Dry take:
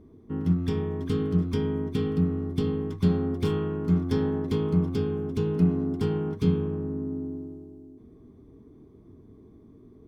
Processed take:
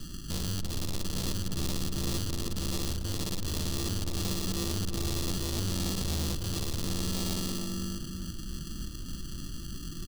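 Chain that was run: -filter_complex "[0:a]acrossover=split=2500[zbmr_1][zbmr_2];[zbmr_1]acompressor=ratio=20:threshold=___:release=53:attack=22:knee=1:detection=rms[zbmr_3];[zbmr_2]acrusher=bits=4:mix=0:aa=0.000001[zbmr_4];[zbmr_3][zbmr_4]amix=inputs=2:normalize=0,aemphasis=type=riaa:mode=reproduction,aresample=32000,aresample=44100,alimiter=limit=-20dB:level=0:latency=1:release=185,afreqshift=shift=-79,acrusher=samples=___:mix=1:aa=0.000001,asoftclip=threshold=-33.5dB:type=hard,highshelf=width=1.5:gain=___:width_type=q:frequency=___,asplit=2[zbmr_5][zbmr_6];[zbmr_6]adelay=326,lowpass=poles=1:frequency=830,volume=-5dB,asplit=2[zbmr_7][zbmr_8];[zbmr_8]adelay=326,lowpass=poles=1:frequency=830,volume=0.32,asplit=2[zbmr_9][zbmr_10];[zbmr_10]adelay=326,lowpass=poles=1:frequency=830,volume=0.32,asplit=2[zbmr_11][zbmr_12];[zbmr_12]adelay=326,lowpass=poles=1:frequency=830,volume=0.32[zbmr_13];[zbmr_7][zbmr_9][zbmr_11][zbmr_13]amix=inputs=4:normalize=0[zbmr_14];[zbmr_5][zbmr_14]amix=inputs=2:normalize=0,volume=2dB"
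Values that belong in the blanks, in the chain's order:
-30dB, 29, 12, 2800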